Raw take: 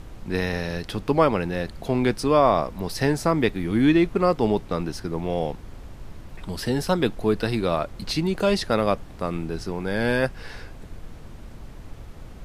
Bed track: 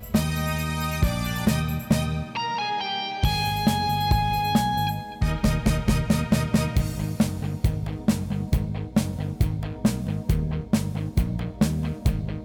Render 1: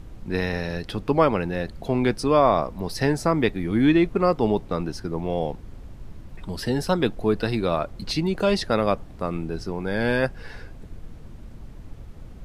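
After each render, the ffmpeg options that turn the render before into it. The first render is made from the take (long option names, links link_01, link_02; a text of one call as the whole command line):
ffmpeg -i in.wav -af "afftdn=noise_reduction=6:noise_floor=-42" out.wav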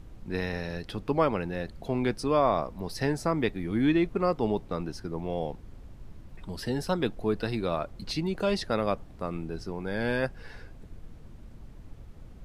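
ffmpeg -i in.wav -af "volume=-6dB" out.wav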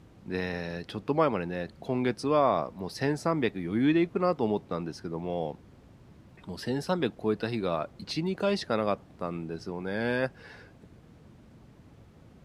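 ffmpeg -i in.wav -af "highpass=110,highshelf=frequency=10000:gain=-7.5" out.wav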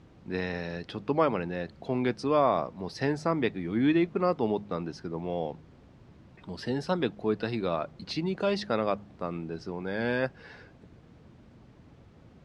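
ffmpeg -i in.wav -af "lowpass=6100,bandreject=frequency=51.39:width_type=h:width=4,bandreject=frequency=102.78:width_type=h:width=4,bandreject=frequency=154.17:width_type=h:width=4,bandreject=frequency=205.56:width_type=h:width=4" out.wav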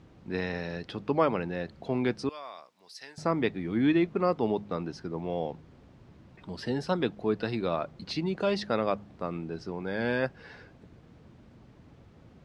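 ffmpeg -i in.wav -filter_complex "[0:a]asettb=1/sr,asplit=3[link_01][link_02][link_03];[link_01]atrim=end=2.294[link_04];[link_02]atrim=start=2.29:end=3.18,asetpts=PTS-STARTPTS,afade=type=in:duration=0.004:curve=qsin,afade=type=out:start_time=0.886:duration=0.004:curve=qsin,aderivative[link_05];[link_03]atrim=start=3.176[link_06];[link_04][link_05]acrossfade=duration=0.004:curve1=hsin:curve2=qsin[link_07];[link_07][link_06]acrossfade=duration=0.004:curve1=qsin:curve2=hsin" out.wav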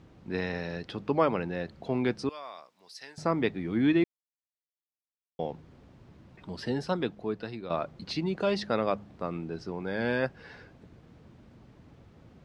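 ffmpeg -i in.wav -filter_complex "[0:a]asplit=4[link_01][link_02][link_03][link_04];[link_01]atrim=end=4.04,asetpts=PTS-STARTPTS,afade=type=out:start_time=4.036:duration=0.004:curve=hsin[link_05];[link_02]atrim=start=4.04:end=5.39,asetpts=PTS-STARTPTS,volume=0[link_06];[link_03]atrim=start=5.39:end=7.7,asetpts=PTS-STARTPTS,afade=type=in:duration=0.004:curve=hsin,afade=type=out:start_time=1.34:duration=0.97:silence=0.298538[link_07];[link_04]atrim=start=7.7,asetpts=PTS-STARTPTS,afade=type=in:duration=0.004:curve=hsin:silence=0.298538[link_08];[link_05][link_06][link_07][link_08]concat=n=4:v=0:a=1" out.wav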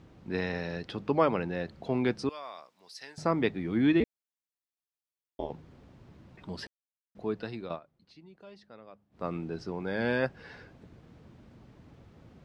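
ffmpeg -i in.wav -filter_complex "[0:a]asettb=1/sr,asplit=3[link_01][link_02][link_03];[link_01]atrim=end=4.004[link_04];[link_02]atrim=start=4:end=5.5,asetpts=PTS-STARTPTS,afade=type=in:duration=0.004:curve=qsin,afade=type=out:start_time=1.496:duration=0.004:curve=qsin,aeval=exprs='val(0)*sin(2*PI*110*n/s)':channel_layout=same[link_05];[link_03]atrim=start=5.496[link_06];[link_04][link_05]acrossfade=duration=0.004:curve1=hsin:curve2=qsin[link_07];[link_07][link_06]acrossfade=duration=0.004:curve1=qsin:curve2=hsin,asplit=5[link_08][link_09][link_10][link_11][link_12];[link_08]atrim=end=6.67,asetpts=PTS-STARTPTS,afade=type=out:start_time=6.666:duration=0.004:curve=hsin[link_13];[link_09]atrim=start=6.67:end=7.15,asetpts=PTS-STARTPTS,volume=0[link_14];[link_10]atrim=start=7.15:end=7.8,asetpts=PTS-STARTPTS,afade=type=in:duration=0.004:curve=hsin,afade=type=out:start_time=0.5:duration=0.15:silence=0.0707946[link_15];[link_11]atrim=start=7.8:end=9.11,asetpts=PTS-STARTPTS,volume=-23dB[link_16];[link_12]atrim=start=9.11,asetpts=PTS-STARTPTS,afade=type=in:duration=0.15:silence=0.0707946[link_17];[link_13][link_14][link_15][link_16][link_17]concat=n=5:v=0:a=1" out.wav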